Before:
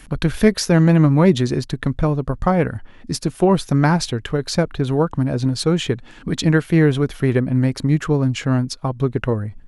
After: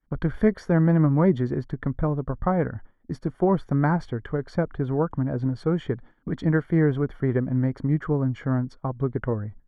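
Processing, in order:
downward expander −29 dBFS
Savitzky-Golay smoothing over 41 samples
level −6 dB

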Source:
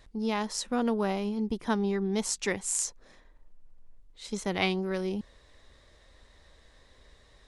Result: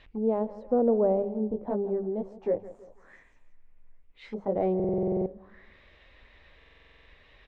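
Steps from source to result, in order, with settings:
wave folding −18.5 dBFS
0:01.22–0:04.56: chorus effect 1.8 Hz, delay 15 ms, depth 4.1 ms
mains-hum notches 50/100/150/200 Hz
repeating echo 164 ms, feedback 41%, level −16.5 dB
buffer that repeats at 0:04.75/0:06.57, samples 2,048, times 10
envelope-controlled low-pass 560–3,000 Hz down, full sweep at −32 dBFS

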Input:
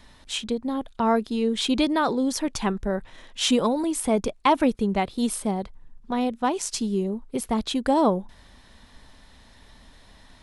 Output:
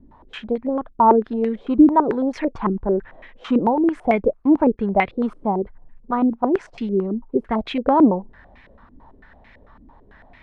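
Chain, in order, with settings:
low-pass on a step sequencer 9 Hz 300–2,200 Hz
level +1 dB

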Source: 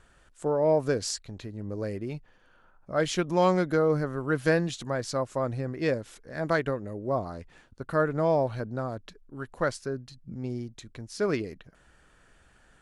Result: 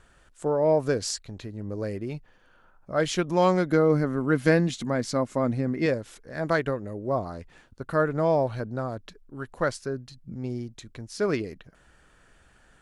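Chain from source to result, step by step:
0:03.71–0:05.86: hollow resonant body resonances 230/2,100 Hz, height 10 dB, ringing for 35 ms
level +1.5 dB

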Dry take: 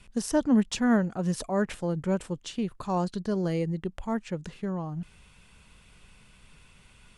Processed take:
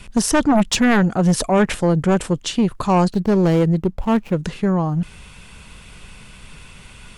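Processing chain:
0:03.13–0:04.45: running median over 25 samples
sine wavefolder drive 8 dB, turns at −13 dBFS
level +2.5 dB

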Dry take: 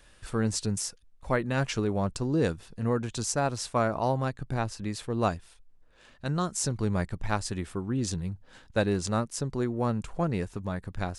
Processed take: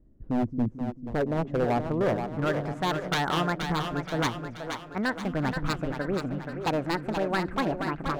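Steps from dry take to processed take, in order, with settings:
gliding playback speed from 110% → 163%
low-pass filter sweep 280 Hz → 1,500 Hz, 0:00.53–0:02.53
wave folding −20 dBFS
echo with a time of its own for lows and highs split 310 Hz, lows 222 ms, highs 477 ms, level −6.5 dB

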